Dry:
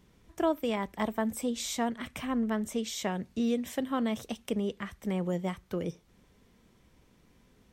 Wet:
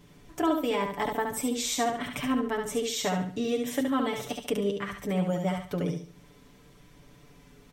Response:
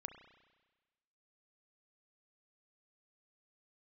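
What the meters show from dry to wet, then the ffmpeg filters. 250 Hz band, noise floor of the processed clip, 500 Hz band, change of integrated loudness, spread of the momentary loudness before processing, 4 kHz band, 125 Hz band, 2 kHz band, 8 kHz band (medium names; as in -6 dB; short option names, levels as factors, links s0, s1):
+1.5 dB, -56 dBFS, +4.0 dB, +3.0 dB, 5 LU, +5.5 dB, +4.0 dB, +5.0 dB, +5.5 dB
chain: -filter_complex "[0:a]aecho=1:1:6.9:0.87,aecho=1:1:70|140|210|280:0.562|0.163|0.0473|0.0137,asplit=2[s0][s1];[s1]acompressor=threshold=0.00794:ratio=6,volume=0.794[s2];[s0][s2]amix=inputs=2:normalize=0"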